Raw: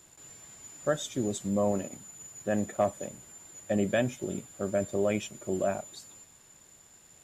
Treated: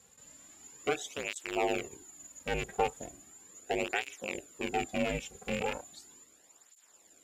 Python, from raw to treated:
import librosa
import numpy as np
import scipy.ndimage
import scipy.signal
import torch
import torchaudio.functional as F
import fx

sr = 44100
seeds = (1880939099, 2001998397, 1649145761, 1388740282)

y = fx.rattle_buzz(x, sr, strikes_db=-35.0, level_db=-20.0)
y = y * np.sin(2.0 * np.pi * 160.0 * np.arange(len(y)) / sr)
y = fx.flanger_cancel(y, sr, hz=0.37, depth_ms=3.4)
y = F.gain(torch.from_numpy(y), 1.5).numpy()